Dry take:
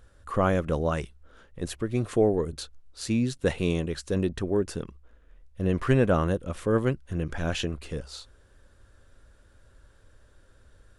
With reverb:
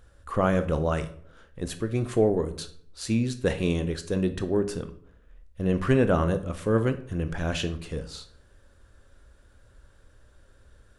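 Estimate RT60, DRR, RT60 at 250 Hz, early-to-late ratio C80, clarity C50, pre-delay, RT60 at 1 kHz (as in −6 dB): 0.60 s, 9.5 dB, 0.70 s, 17.5 dB, 13.5 dB, 18 ms, 0.55 s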